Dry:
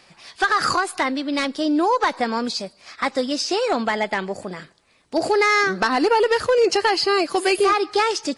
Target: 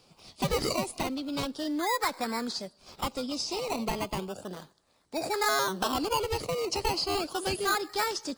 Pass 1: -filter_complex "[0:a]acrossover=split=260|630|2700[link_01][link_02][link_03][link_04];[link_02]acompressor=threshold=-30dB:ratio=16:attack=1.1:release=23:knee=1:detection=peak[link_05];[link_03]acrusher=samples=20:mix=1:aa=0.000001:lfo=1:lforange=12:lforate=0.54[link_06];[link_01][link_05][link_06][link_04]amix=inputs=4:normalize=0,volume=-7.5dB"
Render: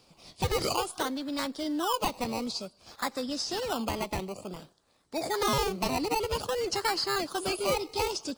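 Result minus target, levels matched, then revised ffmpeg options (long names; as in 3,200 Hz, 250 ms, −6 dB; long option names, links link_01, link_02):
sample-and-hold swept by an LFO: distortion +6 dB
-filter_complex "[0:a]acrossover=split=260|630|2700[link_01][link_02][link_03][link_04];[link_02]acompressor=threshold=-30dB:ratio=16:attack=1.1:release=23:knee=1:detection=peak[link_05];[link_03]acrusher=samples=20:mix=1:aa=0.000001:lfo=1:lforange=12:lforate=0.34[link_06];[link_01][link_05][link_06][link_04]amix=inputs=4:normalize=0,volume=-7.5dB"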